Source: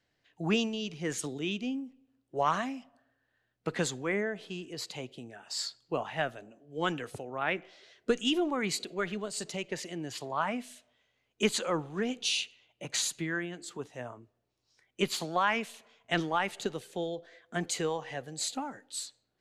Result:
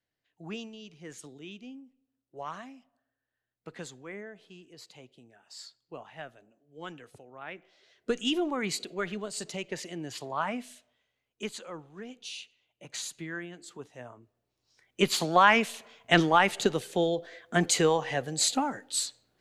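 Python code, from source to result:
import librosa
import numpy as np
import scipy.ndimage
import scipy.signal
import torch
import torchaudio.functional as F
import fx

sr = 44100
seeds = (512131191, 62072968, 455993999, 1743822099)

y = fx.gain(x, sr, db=fx.line((7.58, -11.0), (8.21, 0.0), (10.7, 0.0), (11.63, -11.0), (12.3, -11.0), (13.38, -4.0), (14.09, -4.0), (15.4, 8.0)))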